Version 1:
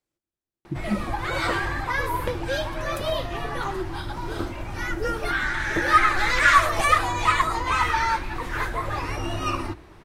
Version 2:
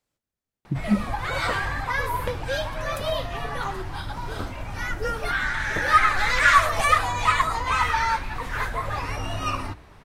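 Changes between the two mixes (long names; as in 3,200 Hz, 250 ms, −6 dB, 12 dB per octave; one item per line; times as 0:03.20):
speech +5.5 dB
master: add parametric band 340 Hz −14.5 dB 0.23 octaves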